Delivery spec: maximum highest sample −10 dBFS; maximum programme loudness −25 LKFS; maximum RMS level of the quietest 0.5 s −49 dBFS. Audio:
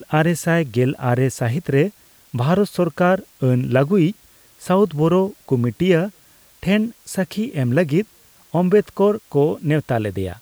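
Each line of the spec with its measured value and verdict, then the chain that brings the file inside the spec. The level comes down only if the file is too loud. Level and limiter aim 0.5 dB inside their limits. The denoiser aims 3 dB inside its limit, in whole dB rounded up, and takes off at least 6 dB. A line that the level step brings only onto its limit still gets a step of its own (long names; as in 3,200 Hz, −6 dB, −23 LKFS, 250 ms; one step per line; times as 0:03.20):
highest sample −5.0 dBFS: out of spec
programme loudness −19.5 LKFS: out of spec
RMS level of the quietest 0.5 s −51 dBFS: in spec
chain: level −6 dB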